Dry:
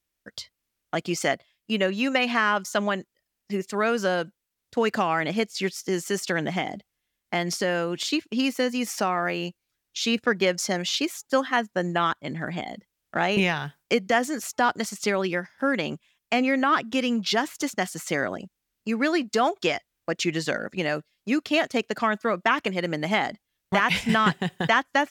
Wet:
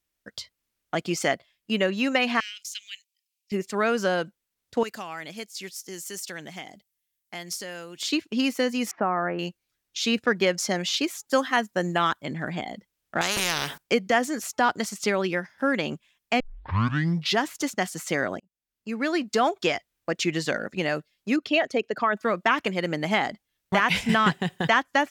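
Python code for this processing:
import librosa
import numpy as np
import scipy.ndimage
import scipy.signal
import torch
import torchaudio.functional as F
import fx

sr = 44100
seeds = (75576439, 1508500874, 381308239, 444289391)

y = fx.ellip_highpass(x, sr, hz=2400.0, order=4, stop_db=60, at=(2.4, 3.52))
y = fx.pre_emphasis(y, sr, coefficient=0.8, at=(4.83, 8.03))
y = fx.lowpass(y, sr, hz=1700.0, slope=24, at=(8.91, 9.39))
y = fx.high_shelf(y, sr, hz=6200.0, db=9.0, at=(11.27, 12.26))
y = fx.spectral_comp(y, sr, ratio=4.0, at=(13.21, 13.78))
y = fx.envelope_sharpen(y, sr, power=1.5, at=(21.36, 22.17))
y = fx.edit(y, sr, fx.tape_start(start_s=16.4, length_s=0.97),
    fx.fade_in_span(start_s=18.4, length_s=0.92), tone=tone)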